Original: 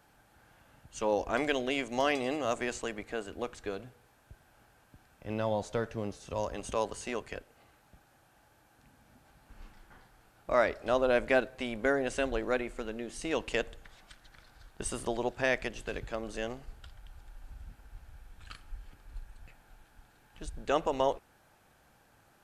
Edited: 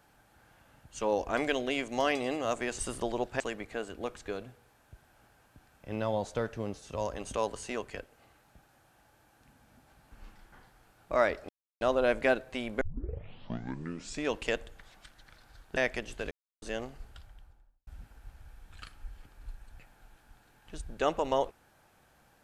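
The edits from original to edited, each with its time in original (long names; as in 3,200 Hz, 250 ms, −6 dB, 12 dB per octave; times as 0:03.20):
0:10.87: splice in silence 0.32 s
0:11.87: tape start 1.52 s
0:14.83–0:15.45: move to 0:02.78
0:15.99–0:16.30: silence
0:16.80–0:17.55: fade out and dull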